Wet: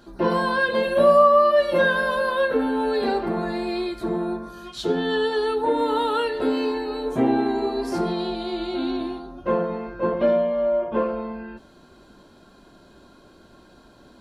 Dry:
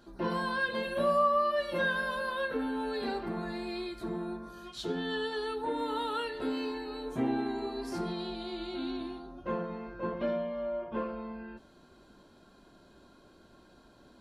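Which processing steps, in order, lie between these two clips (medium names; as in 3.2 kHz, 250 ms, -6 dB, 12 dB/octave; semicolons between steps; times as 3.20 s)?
dynamic bell 550 Hz, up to +6 dB, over -45 dBFS, Q 0.86; trim +7.5 dB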